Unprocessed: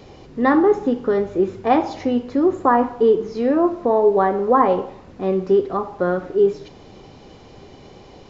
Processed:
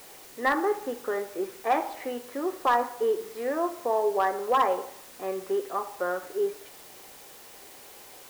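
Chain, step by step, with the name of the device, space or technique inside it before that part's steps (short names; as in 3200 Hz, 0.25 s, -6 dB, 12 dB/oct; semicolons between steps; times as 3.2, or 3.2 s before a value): drive-through speaker (BPF 540–2900 Hz; bell 1900 Hz +5 dB 0.57 oct; hard clip -10 dBFS, distortion -20 dB; white noise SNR 20 dB); gain -5.5 dB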